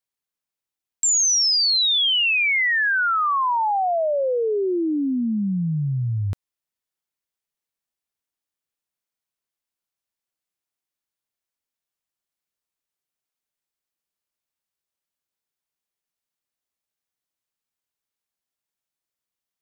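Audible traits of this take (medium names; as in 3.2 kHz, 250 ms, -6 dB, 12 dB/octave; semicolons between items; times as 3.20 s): noise floor -89 dBFS; spectral tilt -2.5 dB/octave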